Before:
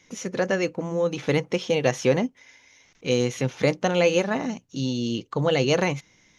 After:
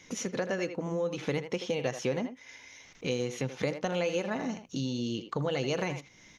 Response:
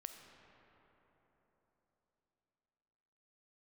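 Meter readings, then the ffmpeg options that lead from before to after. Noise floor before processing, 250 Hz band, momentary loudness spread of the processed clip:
−61 dBFS, −7.5 dB, 8 LU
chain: -filter_complex "[0:a]asplit=2[link_01][link_02];[link_02]adelay=80,highpass=300,lowpass=3400,asoftclip=type=hard:threshold=-14.5dB,volume=-10dB[link_03];[link_01][link_03]amix=inputs=2:normalize=0,acompressor=threshold=-38dB:ratio=2.5,volume=3.5dB"

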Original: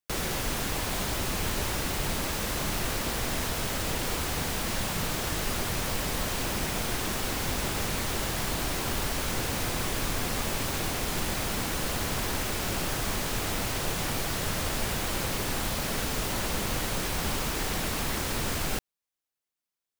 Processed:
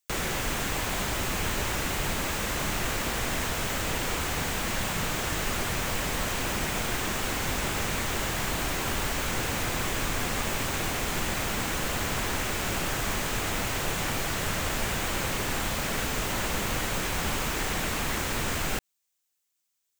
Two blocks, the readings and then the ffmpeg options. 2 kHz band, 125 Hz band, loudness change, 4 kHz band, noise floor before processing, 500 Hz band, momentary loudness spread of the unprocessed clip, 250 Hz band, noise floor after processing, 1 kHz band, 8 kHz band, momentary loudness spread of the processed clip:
+3.5 dB, 0.0 dB, +1.0 dB, +0.5 dB, below −85 dBFS, +0.5 dB, 0 LU, 0.0 dB, −78 dBFS, +2.0 dB, +0.5 dB, 0 LU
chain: -filter_complex "[0:a]acrossover=split=2700[link_01][link_02];[link_02]acompressor=threshold=-45dB:ratio=4:attack=1:release=60[link_03];[link_01][link_03]amix=inputs=2:normalize=0,equalizer=frequency=5200:width=0.34:gain=8.5,aexciter=amount=1.9:drive=4.5:freq=6500"

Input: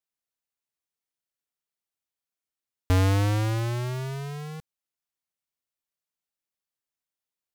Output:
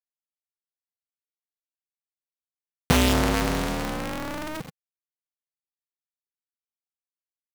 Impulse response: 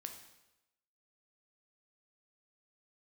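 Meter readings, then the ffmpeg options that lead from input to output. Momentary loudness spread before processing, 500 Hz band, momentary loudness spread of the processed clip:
15 LU, +5.0 dB, 15 LU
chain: -filter_complex "[0:a]acrossover=split=110|1600|2800[link_01][link_02][link_03][link_04];[link_01]alimiter=level_in=6dB:limit=-24dB:level=0:latency=1,volume=-6dB[link_05];[link_02]aeval=exprs='(mod(11.2*val(0)+1,2)-1)/11.2':channel_layout=same[link_06];[link_04]agate=range=-10dB:threshold=-47dB:ratio=16:detection=peak[link_07];[link_05][link_06][link_03][link_07]amix=inputs=4:normalize=0,asplit=4[link_08][link_09][link_10][link_11];[link_09]adelay=96,afreqshift=-34,volume=-21dB[link_12];[link_10]adelay=192,afreqshift=-68,volume=-27.9dB[link_13];[link_11]adelay=288,afreqshift=-102,volume=-34.9dB[link_14];[link_08][link_12][link_13][link_14]amix=inputs=4:normalize=0,adynamicequalizer=threshold=0.00794:dfrequency=140:dqfactor=0.7:tfrequency=140:tqfactor=0.7:attack=5:release=100:ratio=0.375:range=3:mode=cutabove:tftype=bell,acrusher=bits=8:mix=0:aa=0.000001,asubboost=boost=8.5:cutoff=51,acompressor=mode=upward:threshold=-27dB:ratio=2.5,aeval=exprs='val(0)*sgn(sin(2*PI*160*n/s))':channel_layout=same,volume=4.5dB"

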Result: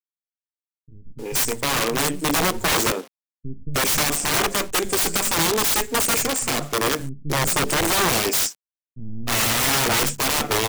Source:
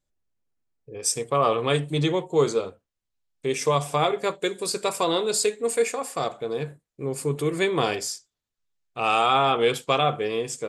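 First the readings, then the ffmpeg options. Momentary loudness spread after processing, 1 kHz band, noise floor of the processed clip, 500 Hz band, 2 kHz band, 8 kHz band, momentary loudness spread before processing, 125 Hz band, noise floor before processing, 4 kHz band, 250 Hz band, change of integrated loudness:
7 LU, +0.5 dB, below −85 dBFS, −3.0 dB, +8.0 dB, +9.5 dB, 11 LU, +1.0 dB, −84 dBFS, +7.0 dB, +3.0 dB, +4.5 dB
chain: -filter_complex "[0:a]aeval=exprs='if(lt(val(0),0),0.251*val(0),val(0))':channel_layout=same,firequalizer=gain_entry='entry(140,0);entry(240,11);entry(490,4);entry(820,1);entry(1300,3);entry(2400,5);entry(3800,-3);entry(5600,10);entry(9100,9);entry(13000,-26)':delay=0.05:min_phase=1,asplit=2[link_01][link_02];[link_02]acompressor=threshold=-34dB:ratio=16,volume=-2dB[link_03];[link_01][link_03]amix=inputs=2:normalize=0,acrusher=bits=7:mix=0:aa=0.000001,equalizer=frequency=7700:width_type=o:width=3:gain=4.5,acrossover=split=170[link_04][link_05];[link_05]adelay=310[link_06];[link_04][link_06]amix=inputs=2:normalize=0,dynaudnorm=framelen=540:gausssize=3:maxgain=6.5dB,aeval=exprs='(mod(5.96*val(0)+1,2)-1)/5.96':channel_layout=same,volume=1dB" -ar 44100 -c:a aac -b:a 128k

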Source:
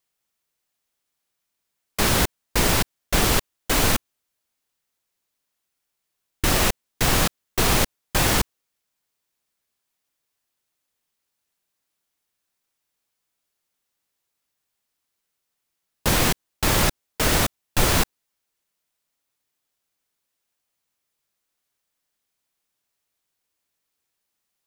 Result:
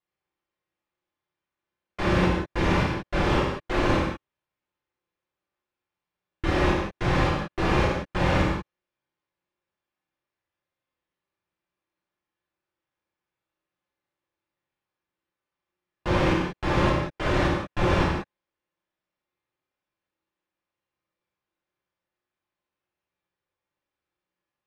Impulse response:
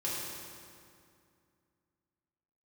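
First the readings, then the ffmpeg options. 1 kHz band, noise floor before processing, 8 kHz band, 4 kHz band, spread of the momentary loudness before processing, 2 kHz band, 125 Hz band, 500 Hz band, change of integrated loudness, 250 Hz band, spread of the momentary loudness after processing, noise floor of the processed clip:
−0.5 dB, −80 dBFS, −22.0 dB, −10.0 dB, 5 LU, −3.0 dB, +0.5 dB, +1.5 dB, −3.5 dB, +2.0 dB, 5 LU, below −85 dBFS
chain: -filter_complex "[0:a]lowpass=2300[link_01];[1:a]atrim=start_sample=2205,afade=type=out:start_time=0.25:duration=0.01,atrim=end_sample=11466[link_02];[link_01][link_02]afir=irnorm=-1:irlink=0,volume=-4.5dB"

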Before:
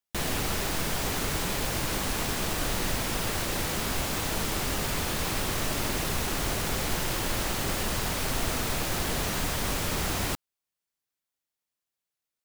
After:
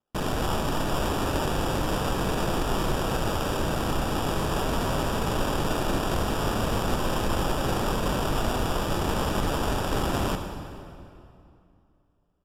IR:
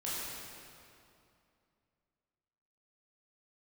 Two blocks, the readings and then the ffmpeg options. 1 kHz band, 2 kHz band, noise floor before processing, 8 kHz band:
+5.5 dB, −1.0 dB, below −85 dBFS, −6.0 dB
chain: -filter_complex "[0:a]acrusher=samples=21:mix=1:aa=0.000001,asplit=2[link_01][link_02];[1:a]atrim=start_sample=2205[link_03];[link_02][link_03]afir=irnorm=-1:irlink=0,volume=-7dB[link_04];[link_01][link_04]amix=inputs=2:normalize=0,aresample=32000,aresample=44100"

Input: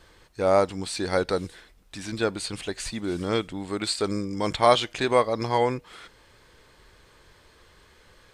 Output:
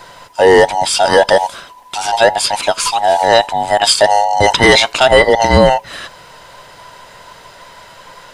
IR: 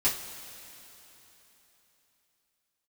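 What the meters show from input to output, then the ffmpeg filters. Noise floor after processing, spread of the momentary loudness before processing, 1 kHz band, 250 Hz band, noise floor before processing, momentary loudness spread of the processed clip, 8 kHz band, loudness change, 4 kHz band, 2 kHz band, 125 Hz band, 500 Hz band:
−40 dBFS, 12 LU, +15.5 dB, +8.5 dB, −57 dBFS, 11 LU, +17.0 dB, +14.5 dB, +16.5 dB, +19.5 dB, +10.5 dB, +13.5 dB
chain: -af "afftfilt=real='real(if(between(b,1,1008),(2*floor((b-1)/48)+1)*48-b,b),0)':imag='imag(if(between(b,1,1008),(2*floor((b-1)/48)+1)*48-b,b),0)*if(between(b,1,1008),-1,1)':win_size=2048:overlap=0.75,apsyclip=18.5dB,volume=-1.5dB"

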